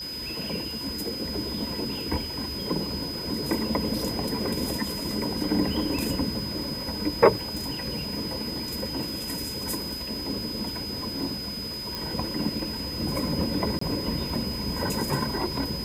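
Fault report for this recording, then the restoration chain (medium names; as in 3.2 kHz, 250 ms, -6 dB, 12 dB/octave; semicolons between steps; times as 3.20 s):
crackle 34 per s -35 dBFS
whine 5 kHz -33 dBFS
7.57 s: pop
11.95 s: pop
13.79–13.81 s: dropout 24 ms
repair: de-click; band-stop 5 kHz, Q 30; interpolate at 13.79 s, 24 ms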